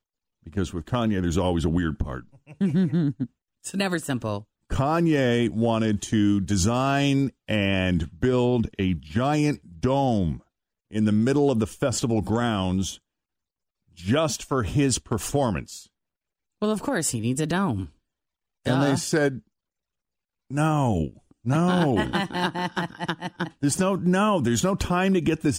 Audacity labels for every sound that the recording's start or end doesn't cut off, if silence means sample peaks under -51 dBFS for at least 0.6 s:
13.930000	15.860000	sound
16.620000	17.920000	sound
18.650000	19.410000	sound